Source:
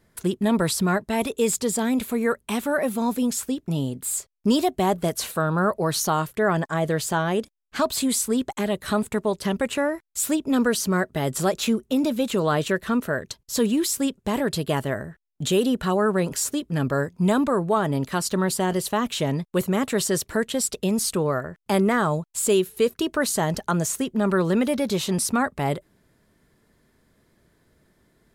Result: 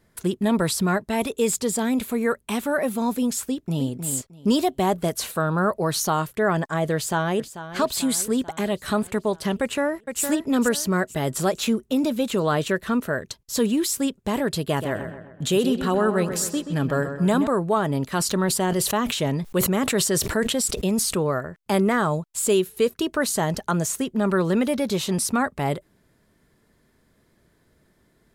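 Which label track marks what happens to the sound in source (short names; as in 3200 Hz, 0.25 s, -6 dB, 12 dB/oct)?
3.460000	3.900000	echo throw 0.31 s, feedback 20%, level -7.5 dB
6.950000	7.780000	echo throw 0.44 s, feedback 60%, level -12.5 dB
9.610000	10.220000	echo throw 0.46 s, feedback 30%, level -7 dB
14.640000	17.470000	darkening echo 0.129 s, feedback 49%, low-pass 3500 Hz, level -9 dB
18.150000	21.310000	sustainer at most 40 dB/s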